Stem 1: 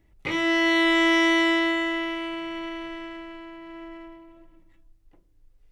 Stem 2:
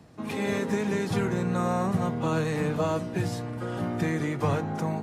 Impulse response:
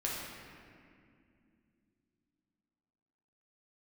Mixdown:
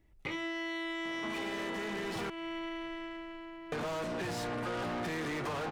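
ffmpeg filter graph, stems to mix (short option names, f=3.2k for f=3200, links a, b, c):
-filter_complex "[0:a]alimiter=limit=-15.5dB:level=0:latency=1,volume=-5dB[a];[1:a]asplit=2[b][c];[c]highpass=f=720:p=1,volume=34dB,asoftclip=type=tanh:threshold=-13dB[d];[b][d]amix=inputs=2:normalize=0,lowpass=f=3.5k:p=1,volume=-6dB,adelay=1050,volume=-10dB,asplit=3[e][f][g];[e]atrim=end=2.3,asetpts=PTS-STARTPTS,afade=t=out:st=2.296:d=0.004:c=hsin[h];[f]atrim=start=2.3:end=3.72,asetpts=PTS-STARTPTS,volume=0[i];[g]atrim=start=3.72,asetpts=PTS-STARTPTS,afade=t=in:d=0.004:c=hsin[j];[h][i][j]concat=n=3:v=0:a=1[k];[a][k]amix=inputs=2:normalize=0,acompressor=threshold=-35dB:ratio=6"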